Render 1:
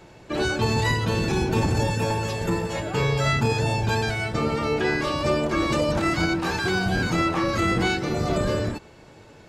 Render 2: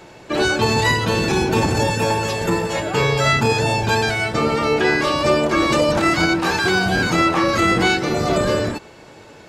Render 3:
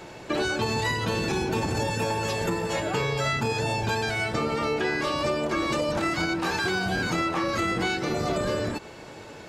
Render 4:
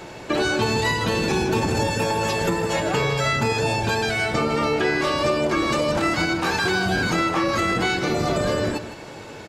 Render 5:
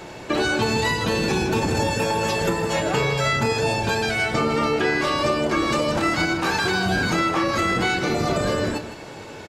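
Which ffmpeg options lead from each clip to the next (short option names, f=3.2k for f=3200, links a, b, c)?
-af "lowshelf=f=170:g=-9,volume=7.5dB"
-af "acompressor=threshold=-25dB:ratio=4"
-af "aecho=1:1:158:0.282,volume=4.5dB"
-filter_complex "[0:a]asplit=2[a][b];[b]adelay=31,volume=-12dB[c];[a][c]amix=inputs=2:normalize=0"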